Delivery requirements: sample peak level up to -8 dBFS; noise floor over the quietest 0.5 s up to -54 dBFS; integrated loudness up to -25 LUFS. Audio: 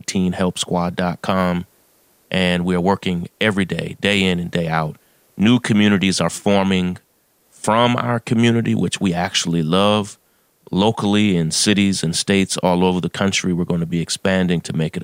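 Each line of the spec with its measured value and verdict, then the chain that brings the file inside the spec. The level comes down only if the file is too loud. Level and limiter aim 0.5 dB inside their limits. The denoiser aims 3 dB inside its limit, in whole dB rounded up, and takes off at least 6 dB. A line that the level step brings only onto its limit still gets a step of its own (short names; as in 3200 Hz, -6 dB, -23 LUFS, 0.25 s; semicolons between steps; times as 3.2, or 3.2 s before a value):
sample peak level -2.5 dBFS: fail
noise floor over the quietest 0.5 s -60 dBFS: OK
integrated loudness -18.0 LUFS: fail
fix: gain -7.5 dB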